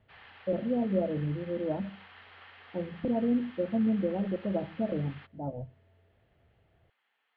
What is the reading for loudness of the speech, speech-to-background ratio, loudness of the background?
-32.0 LUFS, 20.0 dB, -52.0 LUFS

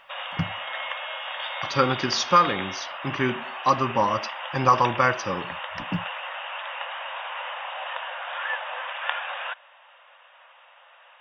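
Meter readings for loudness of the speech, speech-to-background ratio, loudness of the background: -24.5 LUFS, 7.5 dB, -32.0 LUFS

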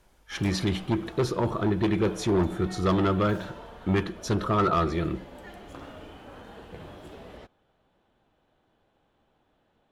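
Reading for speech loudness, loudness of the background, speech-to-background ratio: -27.0 LUFS, -45.0 LUFS, 18.0 dB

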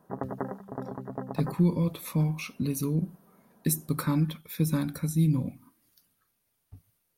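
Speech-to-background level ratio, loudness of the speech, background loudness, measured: 9.0 dB, -29.0 LUFS, -38.0 LUFS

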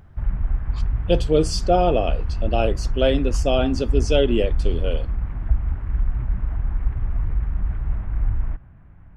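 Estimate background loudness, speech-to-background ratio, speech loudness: -26.5 LUFS, 4.0 dB, -22.5 LUFS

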